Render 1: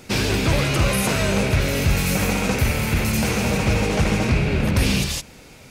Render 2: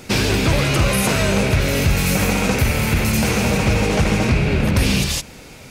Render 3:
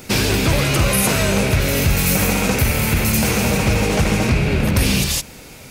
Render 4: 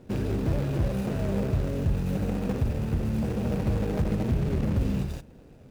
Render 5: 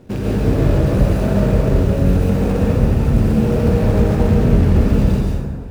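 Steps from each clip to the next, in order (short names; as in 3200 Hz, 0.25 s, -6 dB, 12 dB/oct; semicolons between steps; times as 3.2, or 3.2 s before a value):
compressor 1.5:1, threshold -22 dBFS, peak gain reduction 3.5 dB; gain +5 dB
high shelf 11000 Hz +11.5 dB
median filter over 41 samples; gain -8 dB
plate-style reverb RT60 1.7 s, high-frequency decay 0.45×, pre-delay 0.105 s, DRR -4.5 dB; gain +6 dB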